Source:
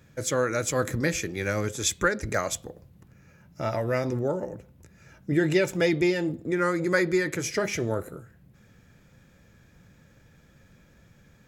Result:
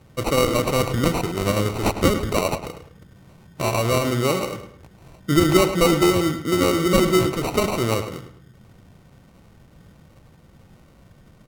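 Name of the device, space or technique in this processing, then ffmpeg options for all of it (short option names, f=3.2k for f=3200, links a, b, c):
crushed at another speed: -filter_complex "[0:a]asetrate=55125,aresample=44100,acrusher=samples=21:mix=1:aa=0.000001,asetrate=35280,aresample=44100,asplit=2[a][b];[b]adelay=105,lowpass=f=4.3k:p=1,volume=-10dB,asplit=2[c][d];[d]adelay=105,lowpass=f=4.3k:p=1,volume=0.36,asplit=2[e][f];[f]adelay=105,lowpass=f=4.3k:p=1,volume=0.36,asplit=2[g][h];[h]adelay=105,lowpass=f=4.3k:p=1,volume=0.36[i];[a][c][e][g][i]amix=inputs=5:normalize=0,volume=6dB"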